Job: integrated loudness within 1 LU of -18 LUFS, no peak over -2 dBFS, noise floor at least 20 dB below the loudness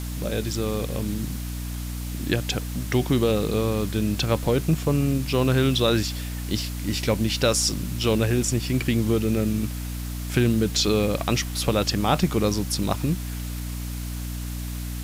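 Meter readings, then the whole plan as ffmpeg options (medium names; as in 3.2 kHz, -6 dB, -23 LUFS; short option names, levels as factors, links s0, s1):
hum 60 Hz; highest harmonic 300 Hz; hum level -29 dBFS; noise floor -31 dBFS; noise floor target -45 dBFS; loudness -24.5 LUFS; peak level -6.5 dBFS; loudness target -18.0 LUFS
-> -af "bandreject=f=60:t=h:w=4,bandreject=f=120:t=h:w=4,bandreject=f=180:t=h:w=4,bandreject=f=240:t=h:w=4,bandreject=f=300:t=h:w=4"
-af "afftdn=nr=14:nf=-31"
-af "volume=2.11,alimiter=limit=0.794:level=0:latency=1"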